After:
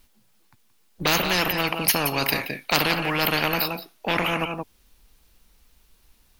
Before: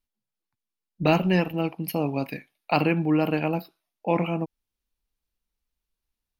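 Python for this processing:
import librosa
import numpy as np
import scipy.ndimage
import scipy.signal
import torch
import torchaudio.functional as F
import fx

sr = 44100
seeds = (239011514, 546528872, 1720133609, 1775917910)

p1 = 10.0 ** (-16.0 / 20.0) * np.tanh(x / 10.0 ** (-16.0 / 20.0))
p2 = x + (p1 * librosa.db_to_amplitude(-4.0))
p3 = p2 + 10.0 ** (-16.5 / 20.0) * np.pad(p2, (int(174 * sr / 1000.0), 0))[:len(p2)]
y = fx.spectral_comp(p3, sr, ratio=4.0)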